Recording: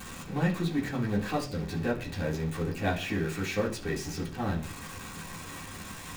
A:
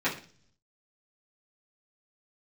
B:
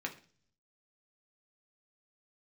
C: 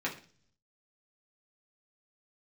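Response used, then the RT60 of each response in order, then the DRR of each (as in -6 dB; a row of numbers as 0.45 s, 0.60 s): C; 0.45 s, 0.45 s, 0.45 s; -11.0 dB, 1.0 dB, -4.5 dB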